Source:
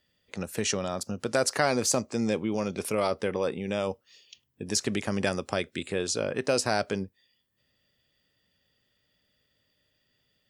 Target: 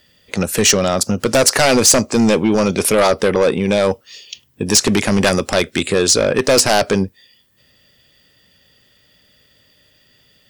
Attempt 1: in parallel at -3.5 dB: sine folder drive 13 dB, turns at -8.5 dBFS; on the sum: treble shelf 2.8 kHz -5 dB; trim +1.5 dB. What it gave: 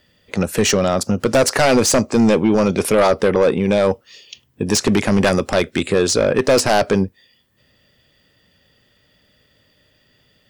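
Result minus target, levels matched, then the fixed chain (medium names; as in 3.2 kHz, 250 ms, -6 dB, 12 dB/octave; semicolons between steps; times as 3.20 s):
4 kHz band -3.5 dB
in parallel at -3.5 dB: sine folder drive 13 dB, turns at -8.5 dBFS; on the sum: treble shelf 2.8 kHz +3 dB; trim +1.5 dB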